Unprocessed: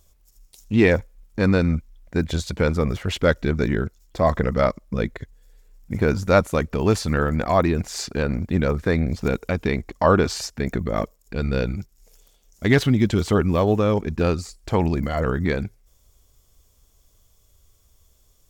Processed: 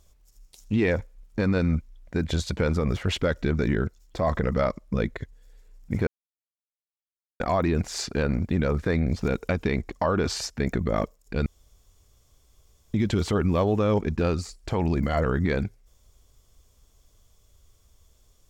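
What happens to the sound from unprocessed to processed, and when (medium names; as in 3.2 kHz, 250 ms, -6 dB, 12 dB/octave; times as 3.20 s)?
6.07–7.40 s: mute
11.46–12.94 s: room tone
whole clip: treble shelf 11 kHz -10 dB; peak limiter -14 dBFS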